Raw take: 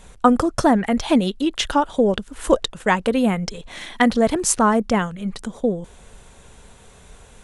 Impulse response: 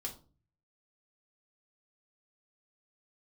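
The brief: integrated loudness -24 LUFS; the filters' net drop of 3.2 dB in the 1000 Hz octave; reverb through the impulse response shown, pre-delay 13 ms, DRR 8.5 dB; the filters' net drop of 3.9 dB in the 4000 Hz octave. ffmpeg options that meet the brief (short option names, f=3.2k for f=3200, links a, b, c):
-filter_complex "[0:a]equalizer=f=1k:t=o:g=-4,equalizer=f=4k:t=o:g=-5,asplit=2[a][b];[1:a]atrim=start_sample=2205,adelay=13[c];[b][c]afir=irnorm=-1:irlink=0,volume=-7dB[d];[a][d]amix=inputs=2:normalize=0,volume=-4dB"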